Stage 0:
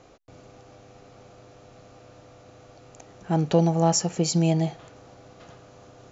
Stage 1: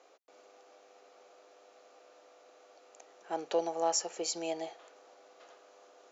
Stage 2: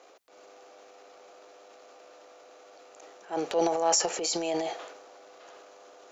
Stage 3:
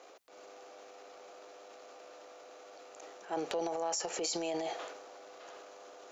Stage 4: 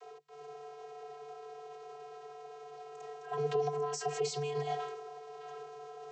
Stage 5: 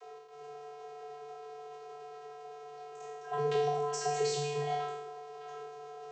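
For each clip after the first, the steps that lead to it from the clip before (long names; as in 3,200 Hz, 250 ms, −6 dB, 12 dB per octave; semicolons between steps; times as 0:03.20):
high-pass filter 400 Hz 24 dB per octave; level −7 dB
transient designer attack −7 dB, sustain +8 dB; level +6.5 dB
downward compressor 6 to 1, threshold −32 dBFS, peak gain reduction 11.5 dB
channel vocoder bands 32, square 146 Hz; level +3 dB
peak hold with a decay on every bin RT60 1.00 s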